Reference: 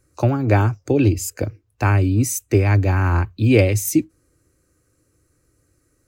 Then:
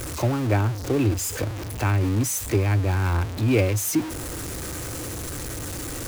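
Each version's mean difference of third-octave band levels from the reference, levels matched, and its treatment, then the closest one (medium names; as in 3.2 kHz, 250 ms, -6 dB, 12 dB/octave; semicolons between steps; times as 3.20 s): 8.5 dB: jump at every zero crossing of -18.5 dBFS; trim -7.5 dB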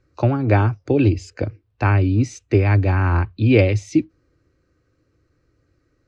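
2.0 dB: low-pass 4.6 kHz 24 dB/octave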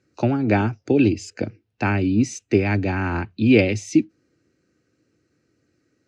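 3.5 dB: cabinet simulation 160–5300 Hz, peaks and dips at 210 Hz +9 dB, 550 Hz -4 dB, 1.1 kHz -9 dB, 2.7 kHz +3 dB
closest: second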